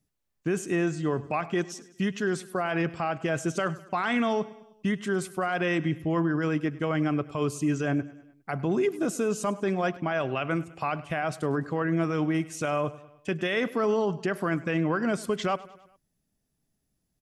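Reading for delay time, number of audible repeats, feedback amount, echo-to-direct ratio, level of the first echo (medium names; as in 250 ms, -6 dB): 102 ms, 3, 53%, -17.5 dB, -19.0 dB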